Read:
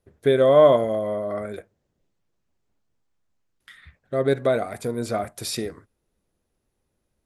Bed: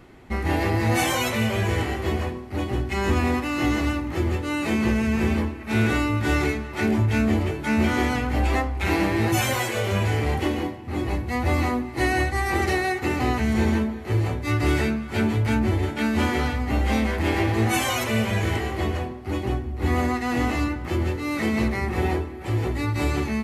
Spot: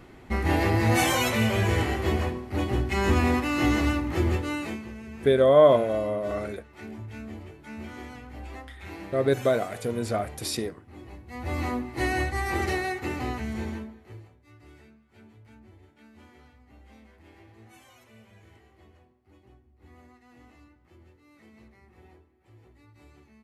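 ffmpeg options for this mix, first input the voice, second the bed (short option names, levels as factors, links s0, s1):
-filter_complex "[0:a]adelay=5000,volume=0.794[s0];[1:a]volume=4.73,afade=t=out:st=4.34:d=0.49:silence=0.125893,afade=t=in:st=11.25:d=0.51:silence=0.199526,afade=t=out:st=12.69:d=1.61:silence=0.0473151[s1];[s0][s1]amix=inputs=2:normalize=0"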